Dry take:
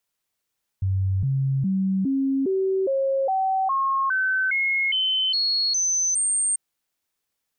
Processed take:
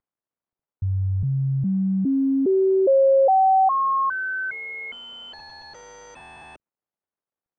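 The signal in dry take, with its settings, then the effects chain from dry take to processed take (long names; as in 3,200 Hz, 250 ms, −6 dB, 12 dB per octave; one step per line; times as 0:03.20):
stepped sweep 95.6 Hz up, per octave 2, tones 14, 0.41 s, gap 0.00 s −19.5 dBFS
variable-slope delta modulation 64 kbit/s
dynamic equaliser 640 Hz, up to +8 dB, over −38 dBFS, Q 0.81
low-pass filter 1,100 Hz 12 dB per octave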